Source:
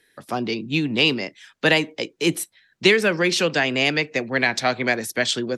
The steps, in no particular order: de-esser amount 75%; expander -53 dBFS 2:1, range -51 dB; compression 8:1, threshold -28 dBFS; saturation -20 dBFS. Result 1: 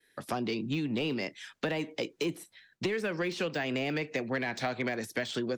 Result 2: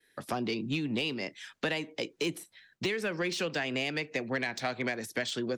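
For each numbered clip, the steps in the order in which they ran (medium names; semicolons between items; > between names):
de-esser > expander > compression > saturation; expander > compression > de-esser > saturation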